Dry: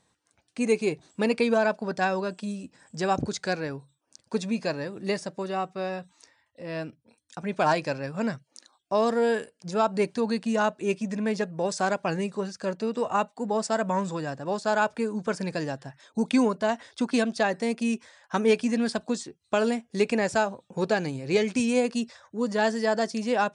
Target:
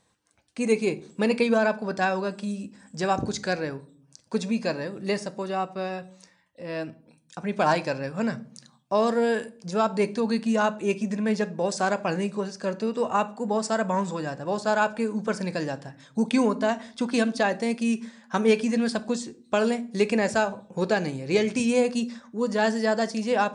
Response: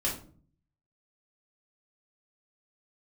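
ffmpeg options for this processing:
-filter_complex "[0:a]asplit=2[s0][s1];[1:a]atrim=start_sample=2205,asetrate=38808,aresample=44100[s2];[s1][s2]afir=irnorm=-1:irlink=0,volume=0.126[s3];[s0][s3]amix=inputs=2:normalize=0"

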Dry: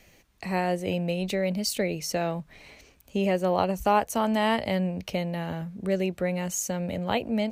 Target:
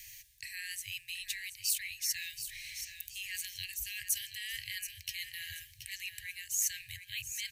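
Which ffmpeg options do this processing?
-af "afftfilt=real='re*(1-between(b*sr/4096,130,1600))':imag='im*(1-between(b*sr/4096,130,1600))':win_size=4096:overlap=0.75,areverse,acompressor=threshold=0.00708:ratio=5,areverse,aecho=1:1:728|1456|2184|2912:0.316|0.101|0.0324|0.0104,crystalizer=i=6:c=0,volume=0.631"

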